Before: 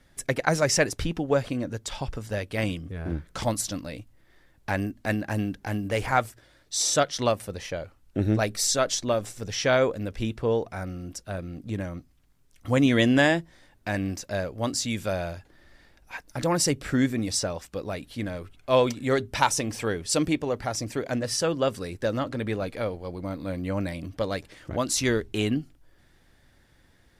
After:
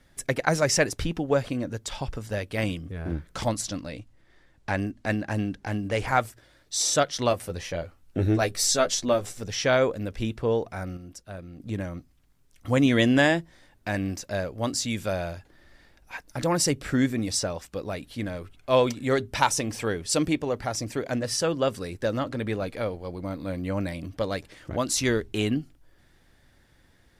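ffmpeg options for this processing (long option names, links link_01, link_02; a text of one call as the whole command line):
ffmpeg -i in.wav -filter_complex "[0:a]asettb=1/sr,asplit=3[link_01][link_02][link_03];[link_01]atrim=end=3.484[link_04];[link_02]atrim=start=3.48:end=6.07,asetpts=PTS-STARTPTS,afade=type=in:duration=0.004:curve=qsin,afade=type=out:start_time=2.586:duration=0.004:curve=qsin,lowpass=8600[link_05];[link_03]atrim=start=6.066[link_06];[link_04][link_05]acrossfade=duration=0.004:curve1=hsin:curve2=qsin[link_07];[link_07][link_06]acrossfade=duration=0.004:curve1=qsin:curve2=hsin,asettb=1/sr,asplit=3[link_08][link_09][link_10];[link_08]atrim=end=7.304[link_11];[link_09]atrim=start=7.3:end=9.43,asetpts=PTS-STARTPTS,afade=type=in:duration=0.004:curve=qsin,afade=type=out:start_time=2.126:duration=0.004:curve=qsin,asplit=2[link_12][link_13];[link_13]adelay=12,volume=-5dB[link_14];[link_12][link_14]amix=inputs=2:normalize=0,atrim=end_sample=93933[link_15];[link_10]atrim=start=9.426[link_16];[link_11][link_15]acrossfade=duration=0.004:curve1=hsin:curve2=qsin[link_17];[link_17][link_16]acrossfade=duration=0.004:curve1=qsin:curve2=hsin,asplit=3[link_18][link_19][link_20];[link_18]atrim=end=10.972[link_21];[link_19]atrim=start=10.968:end=11.602,asetpts=PTS-STARTPTS,volume=-6dB[link_22];[link_20]atrim=start=11.598[link_23];[link_21][link_22]acrossfade=duration=0.004:curve1=hsin:curve2=hsin[link_24];[link_24][link_23]acrossfade=duration=0.004:curve1=hsin:curve2=hsin" out.wav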